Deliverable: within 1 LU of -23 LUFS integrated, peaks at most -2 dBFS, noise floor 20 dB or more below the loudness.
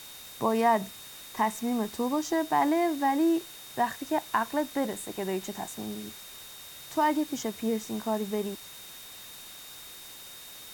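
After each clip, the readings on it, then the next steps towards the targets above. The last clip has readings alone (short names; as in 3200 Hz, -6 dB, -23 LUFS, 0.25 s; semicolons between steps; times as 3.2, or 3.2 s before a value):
steady tone 3700 Hz; tone level -49 dBFS; noise floor -46 dBFS; noise floor target -50 dBFS; loudness -29.5 LUFS; peak -12.5 dBFS; loudness target -23.0 LUFS
-> notch 3700 Hz, Q 30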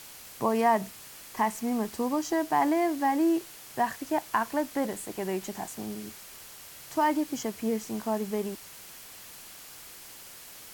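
steady tone none; noise floor -47 dBFS; noise floor target -50 dBFS
-> denoiser 6 dB, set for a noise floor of -47 dBFS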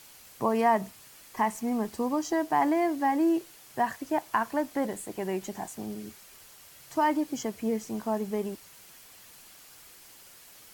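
noise floor -53 dBFS; loudness -29.5 LUFS; peak -12.5 dBFS; loudness target -23.0 LUFS
-> gain +6.5 dB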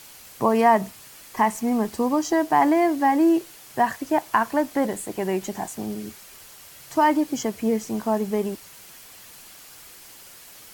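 loudness -23.0 LUFS; peak -6.0 dBFS; noise floor -46 dBFS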